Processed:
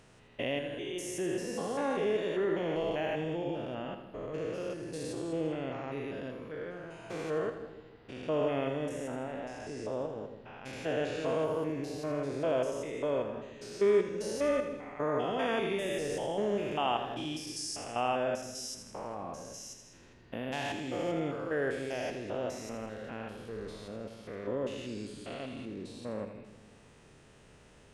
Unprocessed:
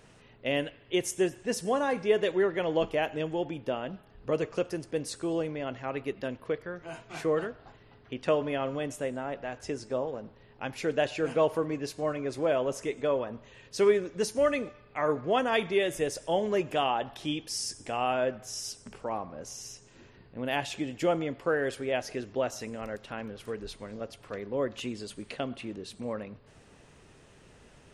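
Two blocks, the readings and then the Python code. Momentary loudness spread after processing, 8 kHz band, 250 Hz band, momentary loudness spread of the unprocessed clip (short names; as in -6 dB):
12 LU, -4.5 dB, -2.5 dB, 13 LU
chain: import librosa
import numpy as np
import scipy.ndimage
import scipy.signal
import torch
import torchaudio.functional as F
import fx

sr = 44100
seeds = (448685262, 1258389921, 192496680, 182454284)

y = fx.spec_steps(x, sr, hold_ms=200)
y = fx.echo_split(y, sr, split_hz=420.0, low_ms=153, high_ms=81, feedback_pct=52, wet_db=-9.0)
y = y * librosa.db_to_amplitude(-1.0)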